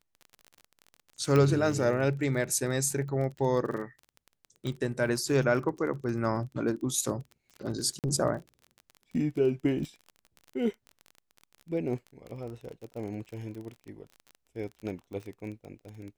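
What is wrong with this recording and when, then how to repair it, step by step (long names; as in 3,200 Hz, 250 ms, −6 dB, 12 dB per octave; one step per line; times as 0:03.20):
surface crackle 30 per second −37 dBFS
0:01.36: click −15 dBFS
0:04.67: click −23 dBFS
0:07.99–0:08.04: drop-out 48 ms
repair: click removal
repair the gap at 0:07.99, 48 ms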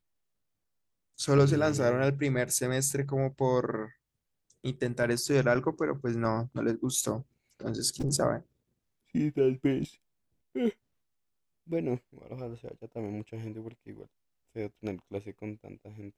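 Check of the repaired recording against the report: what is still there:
none of them is left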